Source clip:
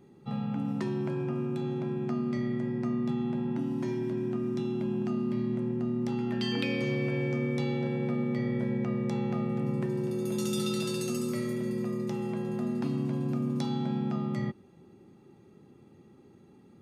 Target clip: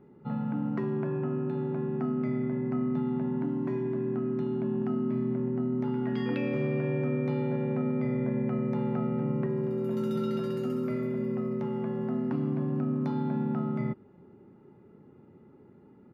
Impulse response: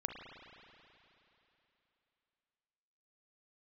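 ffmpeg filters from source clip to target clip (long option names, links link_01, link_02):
-af "firequalizer=gain_entry='entry(1500,0);entry(3300,-15);entry(7900,-28);entry(12000,-16)':delay=0.05:min_phase=1,asetrate=45938,aresample=44100,volume=1dB"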